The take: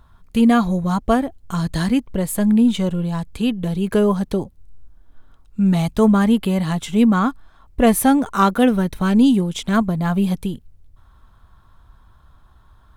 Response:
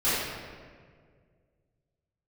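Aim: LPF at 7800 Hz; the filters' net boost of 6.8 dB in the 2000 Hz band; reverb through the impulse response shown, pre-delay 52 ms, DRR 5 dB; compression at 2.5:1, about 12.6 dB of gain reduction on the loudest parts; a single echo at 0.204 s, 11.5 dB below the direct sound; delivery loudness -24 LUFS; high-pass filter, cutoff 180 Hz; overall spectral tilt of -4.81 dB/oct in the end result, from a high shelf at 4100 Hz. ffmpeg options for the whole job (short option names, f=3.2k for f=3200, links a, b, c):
-filter_complex "[0:a]highpass=180,lowpass=7.8k,equalizer=f=2k:t=o:g=8.5,highshelf=f=4.1k:g=4,acompressor=threshold=-30dB:ratio=2.5,aecho=1:1:204:0.266,asplit=2[a][b];[1:a]atrim=start_sample=2205,adelay=52[c];[b][c]afir=irnorm=-1:irlink=0,volume=-19dB[d];[a][d]amix=inputs=2:normalize=0,volume=3.5dB"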